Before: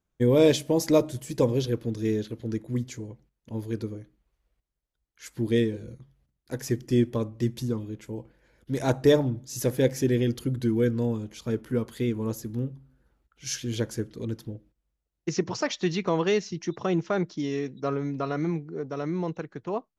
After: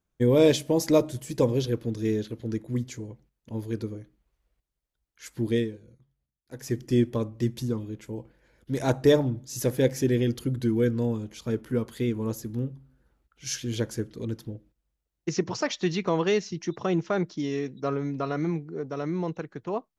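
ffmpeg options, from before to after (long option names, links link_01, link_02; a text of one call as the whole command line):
ffmpeg -i in.wav -filter_complex "[0:a]asplit=3[link_01][link_02][link_03];[link_01]atrim=end=5.8,asetpts=PTS-STARTPTS,afade=type=out:start_time=5.48:duration=0.32:silence=0.237137[link_04];[link_02]atrim=start=5.8:end=6.48,asetpts=PTS-STARTPTS,volume=-12.5dB[link_05];[link_03]atrim=start=6.48,asetpts=PTS-STARTPTS,afade=type=in:duration=0.32:silence=0.237137[link_06];[link_04][link_05][link_06]concat=n=3:v=0:a=1" out.wav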